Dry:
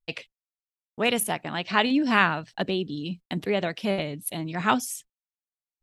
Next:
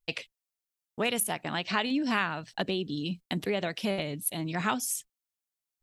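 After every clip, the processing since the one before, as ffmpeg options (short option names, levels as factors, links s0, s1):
-af "highshelf=f=4400:g=6.5,acompressor=threshold=0.0398:ratio=2.5"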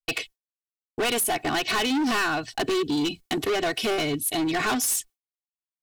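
-af "agate=range=0.0224:threshold=0.00447:ratio=3:detection=peak,aecho=1:1:2.7:0.95,volume=33.5,asoftclip=hard,volume=0.0299,volume=2.66"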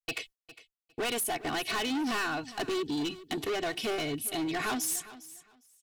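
-af "aecho=1:1:406|812:0.141|0.0268,volume=0.447"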